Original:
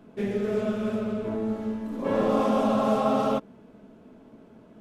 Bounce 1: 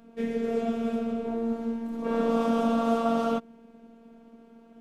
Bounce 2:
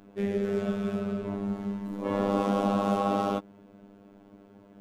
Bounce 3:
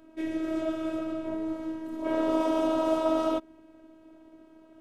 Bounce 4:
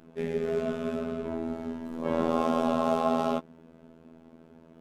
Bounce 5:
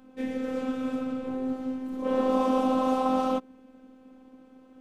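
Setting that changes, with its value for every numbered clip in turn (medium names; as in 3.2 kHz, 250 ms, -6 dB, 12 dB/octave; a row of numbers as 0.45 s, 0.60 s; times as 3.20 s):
robot voice, frequency: 230 Hz, 100 Hz, 320 Hz, 82 Hz, 260 Hz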